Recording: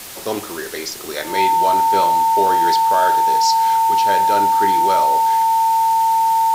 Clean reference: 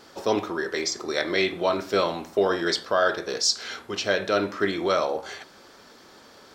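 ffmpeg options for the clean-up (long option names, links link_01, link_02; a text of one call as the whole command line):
ffmpeg -i in.wav -af "bandreject=frequency=900:width=30,afwtdn=0.022" out.wav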